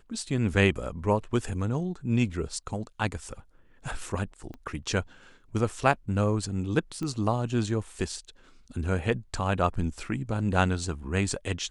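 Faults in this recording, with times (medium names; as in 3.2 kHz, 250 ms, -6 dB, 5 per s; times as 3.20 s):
4.54 s: pop -29 dBFS
7.03 s: pop -22 dBFS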